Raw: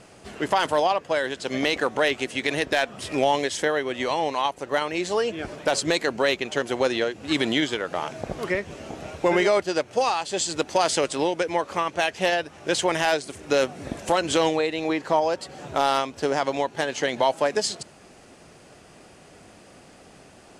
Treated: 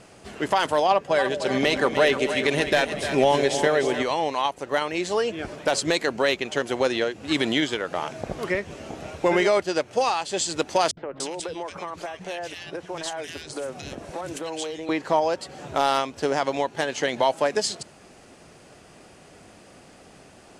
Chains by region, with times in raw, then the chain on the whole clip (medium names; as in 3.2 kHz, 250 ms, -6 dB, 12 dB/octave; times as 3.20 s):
0.88–4.03 s: bass shelf 480 Hz +5 dB + comb 5.1 ms, depth 33% + two-band feedback delay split 560 Hz, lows 196 ms, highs 302 ms, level -8.5 dB
10.91–14.89 s: compression, threshold -27 dBFS + three bands offset in time lows, mids, highs 60/290 ms, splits 210/1800 Hz
whole clip: none